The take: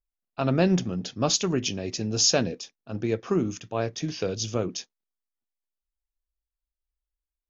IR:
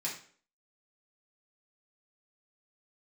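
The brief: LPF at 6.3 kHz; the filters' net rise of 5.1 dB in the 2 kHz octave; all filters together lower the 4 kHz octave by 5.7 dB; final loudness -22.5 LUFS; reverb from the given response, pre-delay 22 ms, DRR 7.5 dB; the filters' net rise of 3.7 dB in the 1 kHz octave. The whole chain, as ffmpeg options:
-filter_complex "[0:a]lowpass=6300,equalizer=f=1000:t=o:g=3.5,equalizer=f=2000:t=o:g=8.5,equalizer=f=4000:t=o:g=-8.5,asplit=2[s0][s1];[1:a]atrim=start_sample=2205,adelay=22[s2];[s1][s2]afir=irnorm=-1:irlink=0,volume=0.299[s3];[s0][s3]amix=inputs=2:normalize=0,volume=1.58"

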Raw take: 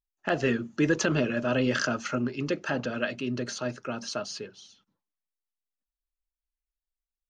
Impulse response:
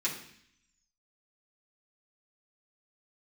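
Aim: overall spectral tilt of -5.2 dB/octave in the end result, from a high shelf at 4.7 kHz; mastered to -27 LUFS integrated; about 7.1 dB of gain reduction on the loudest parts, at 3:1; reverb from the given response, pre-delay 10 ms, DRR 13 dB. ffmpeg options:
-filter_complex "[0:a]highshelf=f=4700:g=-7.5,acompressor=threshold=0.0316:ratio=3,asplit=2[s0][s1];[1:a]atrim=start_sample=2205,adelay=10[s2];[s1][s2]afir=irnorm=-1:irlink=0,volume=0.112[s3];[s0][s3]amix=inputs=2:normalize=0,volume=2.37"

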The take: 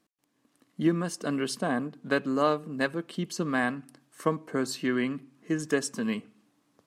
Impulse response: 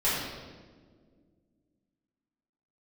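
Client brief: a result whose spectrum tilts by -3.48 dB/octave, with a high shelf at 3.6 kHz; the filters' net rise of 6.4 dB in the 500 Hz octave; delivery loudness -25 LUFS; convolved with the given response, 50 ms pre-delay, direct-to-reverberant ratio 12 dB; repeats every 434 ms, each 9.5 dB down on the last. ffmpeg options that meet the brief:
-filter_complex "[0:a]equalizer=f=500:t=o:g=8,highshelf=f=3600:g=-4,aecho=1:1:434|868|1302|1736:0.335|0.111|0.0365|0.012,asplit=2[s0][s1];[1:a]atrim=start_sample=2205,adelay=50[s2];[s1][s2]afir=irnorm=-1:irlink=0,volume=0.0631[s3];[s0][s3]amix=inputs=2:normalize=0,volume=1.12"

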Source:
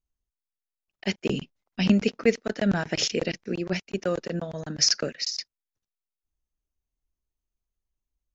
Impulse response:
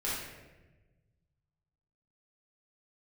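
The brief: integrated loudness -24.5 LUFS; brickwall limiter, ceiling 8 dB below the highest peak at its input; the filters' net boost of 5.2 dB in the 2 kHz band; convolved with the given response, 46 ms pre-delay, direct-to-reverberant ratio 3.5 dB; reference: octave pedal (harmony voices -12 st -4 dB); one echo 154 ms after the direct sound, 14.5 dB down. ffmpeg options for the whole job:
-filter_complex "[0:a]equalizer=f=2000:t=o:g=6.5,alimiter=limit=0.2:level=0:latency=1,aecho=1:1:154:0.188,asplit=2[s0][s1];[1:a]atrim=start_sample=2205,adelay=46[s2];[s1][s2]afir=irnorm=-1:irlink=0,volume=0.335[s3];[s0][s3]amix=inputs=2:normalize=0,asplit=2[s4][s5];[s5]asetrate=22050,aresample=44100,atempo=2,volume=0.631[s6];[s4][s6]amix=inputs=2:normalize=0,volume=1.12"

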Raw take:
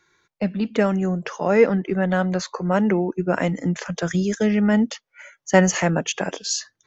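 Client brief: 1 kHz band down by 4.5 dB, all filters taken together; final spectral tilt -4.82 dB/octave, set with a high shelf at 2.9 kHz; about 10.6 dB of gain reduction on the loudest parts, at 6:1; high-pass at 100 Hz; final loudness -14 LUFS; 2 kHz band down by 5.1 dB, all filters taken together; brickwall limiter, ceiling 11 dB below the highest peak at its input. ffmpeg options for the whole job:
-af "highpass=100,equalizer=f=1000:t=o:g=-6,equalizer=f=2000:t=o:g=-6.5,highshelf=f=2900:g=6.5,acompressor=threshold=0.0794:ratio=6,volume=6.68,alimiter=limit=0.531:level=0:latency=1"

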